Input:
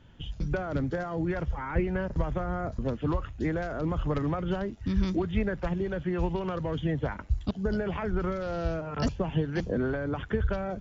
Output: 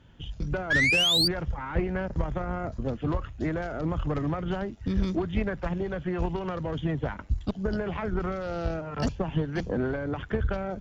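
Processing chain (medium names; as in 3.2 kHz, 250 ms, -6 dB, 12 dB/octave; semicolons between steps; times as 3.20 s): painted sound rise, 0.70–1.28 s, 1.6–4.8 kHz -23 dBFS; Chebyshev shaper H 6 -22 dB, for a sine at -13 dBFS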